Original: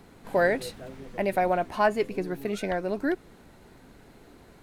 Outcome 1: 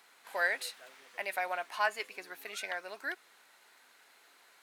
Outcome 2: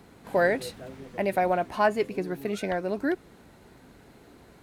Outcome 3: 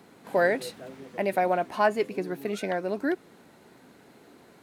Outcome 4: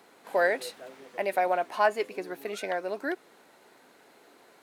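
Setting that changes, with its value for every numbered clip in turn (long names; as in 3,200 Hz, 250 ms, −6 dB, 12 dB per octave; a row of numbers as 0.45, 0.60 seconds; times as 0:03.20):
high-pass filter, corner frequency: 1,300, 43, 170, 460 Hertz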